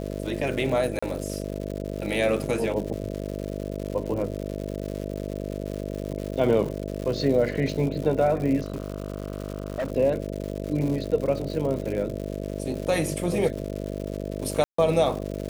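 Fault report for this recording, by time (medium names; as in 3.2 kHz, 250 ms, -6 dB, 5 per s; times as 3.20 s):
buzz 50 Hz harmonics 13 -32 dBFS
crackle 200 per s -32 dBFS
0.99–1.02 s: dropout 35 ms
8.62–9.92 s: clipped -24.5 dBFS
14.64–14.78 s: dropout 144 ms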